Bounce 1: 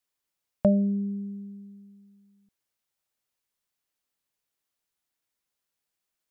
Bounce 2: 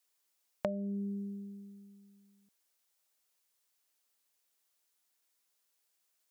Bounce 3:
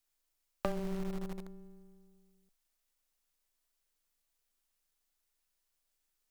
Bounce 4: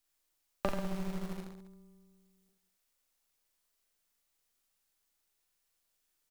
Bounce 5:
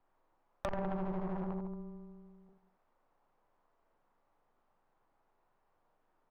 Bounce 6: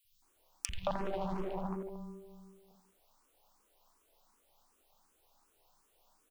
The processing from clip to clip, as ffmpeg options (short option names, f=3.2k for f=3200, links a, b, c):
-af "highpass=92,bass=f=250:g=-10,treble=f=4k:g=5,acompressor=threshold=-35dB:ratio=5,volume=2dB"
-filter_complex "[0:a]aeval=exprs='max(val(0),0)':c=same,afreqshift=-13,asplit=2[a][b];[b]acrusher=bits=4:dc=4:mix=0:aa=0.000001,volume=-3.5dB[c];[a][c]amix=inputs=2:normalize=0"
-af "aecho=1:1:40|86|138.9|199.7|269.7:0.631|0.398|0.251|0.158|0.1,volume=1dB"
-af "acompressor=threshold=-40dB:ratio=5,lowpass=f=940:t=q:w=1.8,aeval=exprs='(tanh(141*val(0)+0.45)-tanh(0.45))/141':c=same,volume=14.5dB"
-filter_complex "[0:a]aexciter=amount=6.1:drive=4.8:freq=2.6k,acrossover=split=160|2200[a][b][c];[a]adelay=40[d];[b]adelay=220[e];[d][e][c]amix=inputs=3:normalize=0,asplit=2[f][g];[g]afreqshift=2.7[h];[f][h]amix=inputs=2:normalize=1,volume=5.5dB"